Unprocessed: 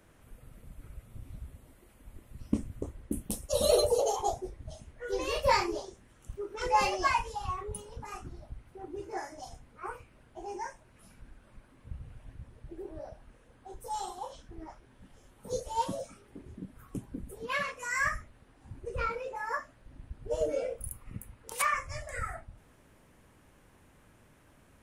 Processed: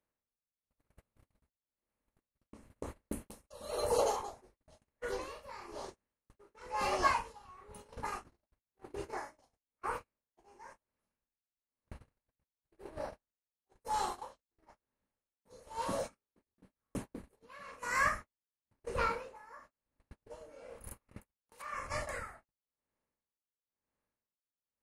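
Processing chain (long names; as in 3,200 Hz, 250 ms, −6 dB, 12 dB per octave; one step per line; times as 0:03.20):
compressor on every frequency bin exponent 0.6
noise gate −33 dBFS, range −40 dB
dynamic equaliser 1,200 Hz, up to +5 dB, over −40 dBFS, Q 1.5
tremolo with a sine in dB 1 Hz, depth 23 dB
level −6 dB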